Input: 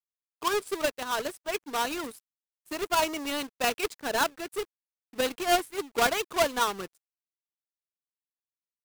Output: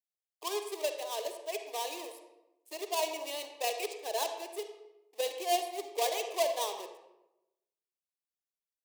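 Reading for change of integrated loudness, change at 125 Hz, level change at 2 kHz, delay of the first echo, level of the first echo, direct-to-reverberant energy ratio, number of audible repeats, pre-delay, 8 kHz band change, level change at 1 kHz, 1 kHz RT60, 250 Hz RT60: -6.0 dB, under -35 dB, -11.5 dB, none, none, 6.0 dB, none, 39 ms, -4.0 dB, -6.5 dB, 0.85 s, 1.1 s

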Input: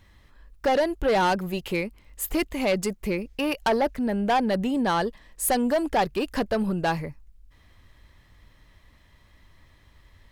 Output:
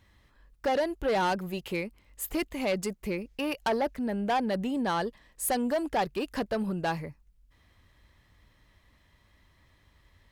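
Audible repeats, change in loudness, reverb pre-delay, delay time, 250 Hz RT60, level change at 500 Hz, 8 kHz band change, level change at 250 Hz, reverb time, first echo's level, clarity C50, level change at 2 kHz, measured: none, -5.0 dB, none, none, none, -5.0 dB, -5.0 dB, -5.0 dB, none, none, none, -5.0 dB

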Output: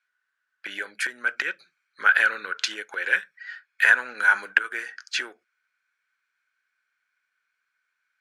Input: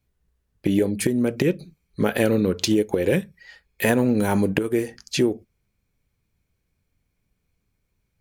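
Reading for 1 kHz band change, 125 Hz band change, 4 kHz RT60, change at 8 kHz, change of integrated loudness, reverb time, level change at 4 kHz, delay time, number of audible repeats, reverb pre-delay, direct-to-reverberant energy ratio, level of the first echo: +3.0 dB, under -35 dB, none, -6.5 dB, -1.0 dB, none, -0.5 dB, none, none, none, none, none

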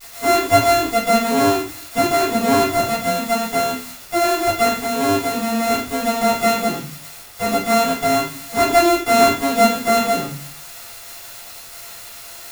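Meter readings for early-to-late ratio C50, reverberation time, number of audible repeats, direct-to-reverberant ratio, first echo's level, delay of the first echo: 5.5 dB, 0.45 s, none, -10.0 dB, none, none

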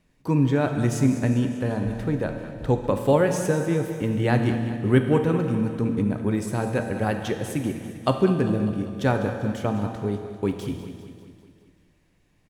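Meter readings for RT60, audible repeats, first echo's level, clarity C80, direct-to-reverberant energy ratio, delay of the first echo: 2.3 s, 5, -13.0 dB, 6.5 dB, 4.5 dB, 0.198 s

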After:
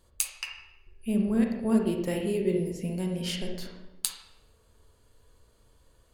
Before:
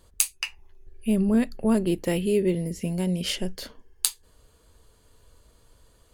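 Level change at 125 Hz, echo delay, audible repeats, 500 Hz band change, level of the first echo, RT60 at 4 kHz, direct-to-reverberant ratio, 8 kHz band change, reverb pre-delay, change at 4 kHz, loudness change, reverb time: -4.0 dB, none, none, -3.5 dB, none, 0.70 s, 2.0 dB, -6.0 dB, 35 ms, -5.0 dB, -3.5 dB, 0.95 s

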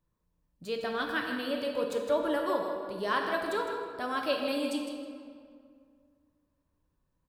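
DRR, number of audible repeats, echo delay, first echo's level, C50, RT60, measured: 1.0 dB, 1, 0.158 s, -8.5 dB, 2.5 dB, 2.1 s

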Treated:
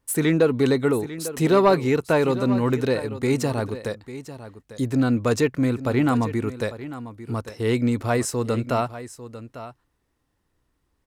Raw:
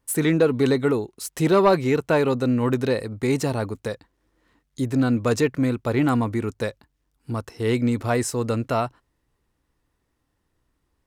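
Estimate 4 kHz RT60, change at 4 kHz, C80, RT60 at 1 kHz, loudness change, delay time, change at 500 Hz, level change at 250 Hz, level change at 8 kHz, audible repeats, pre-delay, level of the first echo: none, 0.0 dB, none, none, 0.0 dB, 0.848 s, 0.0 dB, 0.0 dB, 0.0 dB, 1, none, -14.0 dB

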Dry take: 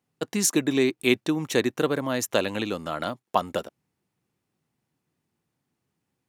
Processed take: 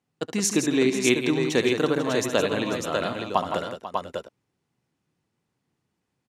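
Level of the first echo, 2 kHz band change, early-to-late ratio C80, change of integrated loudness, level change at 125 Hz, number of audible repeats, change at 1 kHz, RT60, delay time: -11.5 dB, +2.0 dB, none, +1.0 dB, +2.0 dB, 4, +1.5 dB, none, 70 ms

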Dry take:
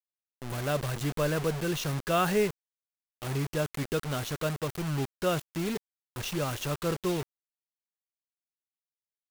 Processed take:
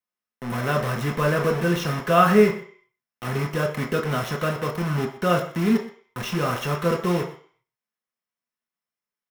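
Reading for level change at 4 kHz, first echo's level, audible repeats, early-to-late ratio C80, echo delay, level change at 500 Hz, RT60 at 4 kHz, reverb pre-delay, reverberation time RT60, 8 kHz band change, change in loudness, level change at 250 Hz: +3.5 dB, -17.0 dB, 1, 12.5 dB, 0.122 s, +8.0 dB, 0.55 s, 3 ms, 0.50 s, 0.0 dB, +8.0 dB, +9.0 dB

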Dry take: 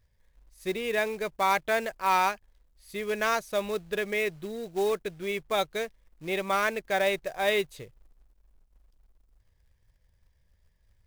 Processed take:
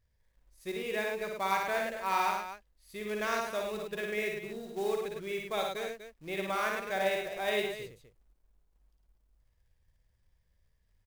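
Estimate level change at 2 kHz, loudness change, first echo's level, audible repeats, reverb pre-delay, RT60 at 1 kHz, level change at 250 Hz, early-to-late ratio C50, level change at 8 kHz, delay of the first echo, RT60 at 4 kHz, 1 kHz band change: -4.5 dB, -5.0 dB, -3.5 dB, 3, none, none, -4.5 dB, none, -4.5 dB, 57 ms, none, -5.0 dB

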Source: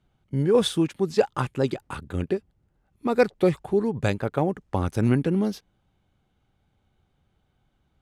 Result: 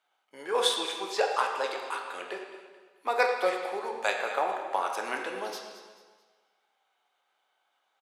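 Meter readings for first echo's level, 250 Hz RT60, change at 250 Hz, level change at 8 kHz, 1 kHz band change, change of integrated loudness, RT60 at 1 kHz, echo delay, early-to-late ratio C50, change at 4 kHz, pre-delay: -15.5 dB, 1.4 s, -20.5 dB, +1.5 dB, +3.5 dB, -5.0 dB, 1.5 s, 0.219 s, 3.5 dB, +3.0 dB, 5 ms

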